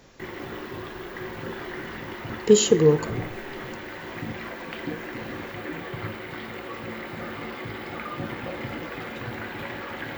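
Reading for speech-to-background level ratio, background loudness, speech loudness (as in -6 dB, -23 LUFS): 14.5 dB, -35.0 LUFS, -20.5 LUFS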